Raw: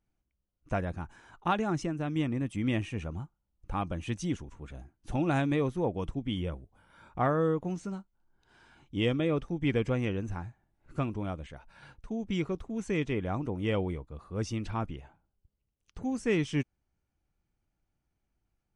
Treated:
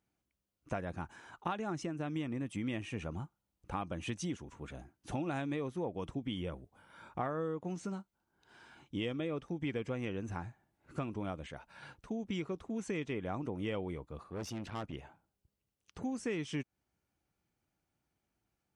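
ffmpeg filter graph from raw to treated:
ffmpeg -i in.wav -filter_complex "[0:a]asettb=1/sr,asplit=3[link_01][link_02][link_03];[link_01]atrim=end=14.234[link_04];[link_02]atrim=start=14.23:end=14.93,asetpts=PTS-STARTPTS,afade=type=in:duration=0.004:curve=qsin,afade=type=out:start_time=0.696:duration=0.004:curve=qsin,highshelf=frequency=7800:gain=-3.5,aeval=exprs='(tanh(56.2*val(0)+0.7)-tanh(0.7))/56.2':channel_layout=same[link_05];[link_03]atrim=start=14.926[link_06];[link_04][link_05]acrossfade=duration=0.004:curve1=hsin:curve2=qsin[link_07];[link_07][link_06]acrossfade=duration=0.004:curve1=qsin:curve2=hsin,highpass=57,lowshelf=frequency=110:gain=-9.5,acompressor=threshold=-37dB:ratio=4,volume=2dB" out.wav

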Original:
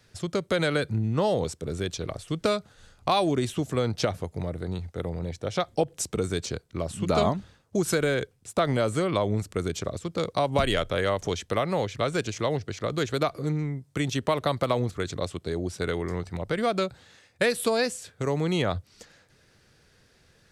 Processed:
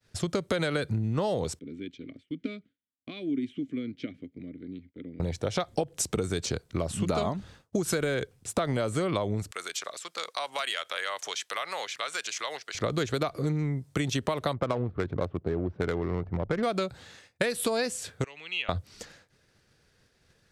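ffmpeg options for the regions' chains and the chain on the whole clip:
ffmpeg -i in.wav -filter_complex "[0:a]asettb=1/sr,asplit=3[link_01][link_02][link_03];[link_01]atrim=end=1.594[link_04];[link_02]atrim=start=1.59:end=5.2,asetpts=PTS-STARTPTS,afade=type=in:duration=0.004:curve=qsin,afade=type=out:start_time=3.606:duration=0.004:curve=qsin,asplit=3[link_05][link_06][link_07];[link_05]bandpass=frequency=270:width_type=q:width=8,volume=0dB[link_08];[link_06]bandpass=frequency=2290:width_type=q:width=8,volume=-6dB[link_09];[link_07]bandpass=frequency=3010:width_type=q:width=8,volume=-9dB[link_10];[link_08][link_09][link_10]amix=inputs=3:normalize=0,highshelf=frequency=2400:gain=-9[link_11];[link_03]atrim=start=5.196[link_12];[link_04][link_11]acrossfade=duration=0.004:curve1=hsin:curve2=qsin[link_13];[link_13][link_12]acrossfade=duration=0.004:curve1=qsin:curve2=hsin,asettb=1/sr,asplit=3[link_14][link_15][link_16];[link_14]atrim=end=9.514[link_17];[link_15]atrim=start=9.51:end=12.75,asetpts=PTS-STARTPTS,afade=type=in:duration=0.004:curve=qsin,afade=type=out:start_time=3.236:duration=0.004:curve=qsin,highpass=1200,acompressor=threshold=-35dB:ratio=2:attack=3.2:release=140:knee=1:detection=peak[link_18];[link_16]atrim=start=12.746[link_19];[link_17][link_18]acrossfade=duration=0.004:curve1=hsin:curve2=qsin[link_20];[link_20][link_19]acrossfade=duration=0.004:curve1=qsin:curve2=hsin,asettb=1/sr,asplit=3[link_21][link_22][link_23];[link_21]atrim=end=14.534[link_24];[link_22]atrim=start=14.53:end=16.63,asetpts=PTS-STARTPTS,afade=type=in:duration=0.004:curve=qsin,afade=type=out:start_time=2.096:duration=0.004:curve=qsin,lowpass=3800,adynamicsmooth=sensitivity=2.5:basefreq=730[link_25];[link_23]atrim=start=16.626[link_26];[link_24][link_25]acrossfade=duration=0.004:curve1=hsin:curve2=qsin[link_27];[link_27][link_26]acrossfade=duration=0.004:curve1=qsin:curve2=hsin,asettb=1/sr,asplit=3[link_28][link_29][link_30];[link_28]atrim=end=18.244[link_31];[link_29]atrim=start=18.24:end=18.69,asetpts=PTS-STARTPTS,afade=type=in:duration=0.004:curve=qsin,afade=type=out:start_time=0.446:duration=0.004:curve=qsin,bandpass=frequency=2700:width_type=q:width=9.4,acontrast=46[link_32];[link_30]atrim=start=18.686[link_33];[link_31][link_32]acrossfade=duration=0.004:curve1=hsin:curve2=qsin[link_34];[link_34][link_33]acrossfade=duration=0.004:curve1=qsin:curve2=hsin,agate=range=-33dB:threshold=-52dB:ratio=3:detection=peak,acompressor=threshold=-30dB:ratio=6,volume=5dB" out.wav

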